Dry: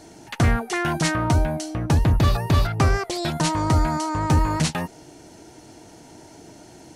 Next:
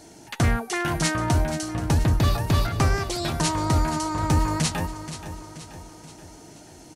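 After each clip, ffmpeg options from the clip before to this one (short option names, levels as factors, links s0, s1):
-filter_complex "[0:a]highshelf=f=5100:g=5.5,bandreject=f=384.4:t=h:w=4,bandreject=f=768.8:t=h:w=4,bandreject=f=1153.2:t=h:w=4,bandreject=f=1537.6:t=h:w=4,bandreject=f=1922:t=h:w=4,bandreject=f=2306.4:t=h:w=4,bandreject=f=2690.8:t=h:w=4,bandreject=f=3075.2:t=h:w=4,bandreject=f=3459.6:t=h:w=4,bandreject=f=3844:t=h:w=4,bandreject=f=4228.4:t=h:w=4,bandreject=f=4612.8:t=h:w=4,bandreject=f=4997.2:t=h:w=4,bandreject=f=5381.6:t=h:w=4,bandreject=f=5766:t=h:w=4,bandreject=f=6150.4:t=h:w=4,bandreject=f=6534.8:t=h:w=4,bandreject=f=6919.2:t=h:w=4,bandreject=f=7303.6:t=h:w=4,bandreject=f=7688:t=h:w=4,bandreject=f=8072.4:t=h:w=4,bandreject=f=8456.8:t=h:w=4,bandreject=f=8841.2:t=h:w=4,bandreject=f=9225.6:t=h:w=4,bandreject=f=9610:t=h:w=4,bandreject=f=9994.4:t=h:w=4,bandreject=f=10378.8:t=h:w=4,bandreject=f=10763.2:t=h:w=4,bandreject=f=11147.6:t=h:w=4,bandreject=f=11532:t=h:w=4,bandreject=f=11916.4:t=h:w=4,bandreject=f=12300.8:t=h:w=4,bandreject=f=12685.2:t=h:w=4,bandreject=f=13069.6:t=h:w=4,bandreject=f=13454:t=h:w=4,asplit=2[s0][s1];[s1]aecho=0:1:479|958|1437|1916|2395:0.251|0.128|0.0653|0.0333|0.017[s2];[s0][s2]amix=inputs=2:normalize=0,volume=0.75"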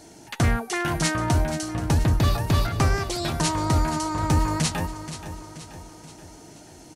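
-af anull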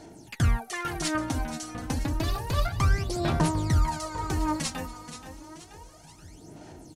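-af "aphaser=in_gain=1:out_gain=1:delay=4.1:decay=0.68:speed=0.3:type=sinusoidal,volume=0.398"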